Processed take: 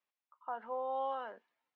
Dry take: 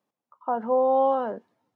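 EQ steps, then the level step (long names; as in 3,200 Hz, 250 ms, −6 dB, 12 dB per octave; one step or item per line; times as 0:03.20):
resonant band-pass 2,400 Hz, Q 1.4
−1.5 dB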